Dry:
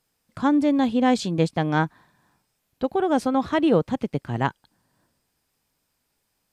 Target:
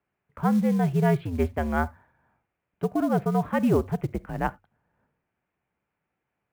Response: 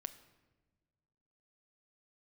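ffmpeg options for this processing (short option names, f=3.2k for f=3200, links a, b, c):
-filter_complex "[0:a]lowshelf=f=110:g=6,bandreject=f=60:t=h:w=6,bandreject=f=120:t=h:w=6,bandreject=f=180:t=h:w=6,highpass=f=160:t=q:w=0.5412,highpass=f=160:t=q:w=1.307,lowpass=f=2.6k:t=q:w=0.5176,lowpass=f=2.6k:t=q:w=0.7071,lowpass=f=2.6k:t=q:w=1.932,afreqshift=-83,asplit=2[a][b];[1:a]atrim=start_sample=2205,atrim=end_sample=3969[c];[b][c]afir=irnorm=-1:irlink=0,volume=3.5dB[d];[a][d]amix=inputs=2:normalize=0,acrusher=bits=7:mode=log:mix=0:aa=0.000001,volume=-9dB"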